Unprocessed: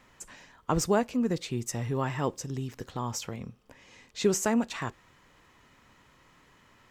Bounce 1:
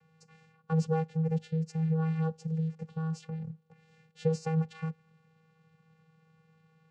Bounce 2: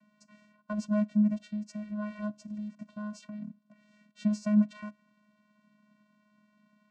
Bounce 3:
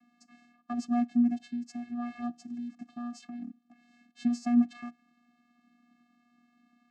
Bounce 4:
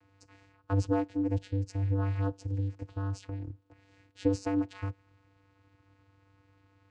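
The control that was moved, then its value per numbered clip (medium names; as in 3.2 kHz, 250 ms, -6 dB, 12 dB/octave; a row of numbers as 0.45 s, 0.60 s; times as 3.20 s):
vocoder, frequency: 160 Hz, 210 Hz, 240 Hz, 98 Hz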